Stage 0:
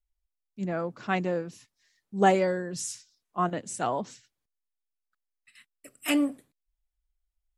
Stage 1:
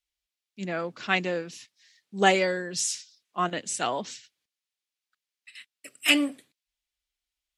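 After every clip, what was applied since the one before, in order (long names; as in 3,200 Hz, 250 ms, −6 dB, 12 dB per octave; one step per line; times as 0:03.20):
meter weighting curve D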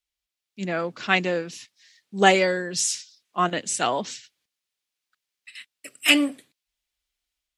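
automatic gain control gain up to 4.5 dB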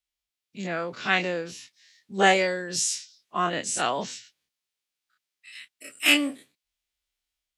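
every bin's largest magnitude spread in time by 60 ms
level −6 dB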